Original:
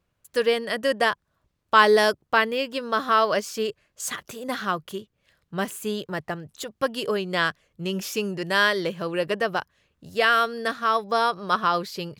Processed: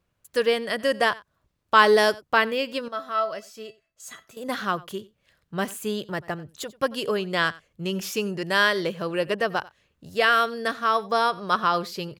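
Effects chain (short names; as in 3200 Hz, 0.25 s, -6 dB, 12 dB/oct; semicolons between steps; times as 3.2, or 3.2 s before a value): 2.88–4.37 resonator 660 Hz, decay 0.21 s, harmonics all, mix 80%; on a send: echo 91 ms -21.5 dB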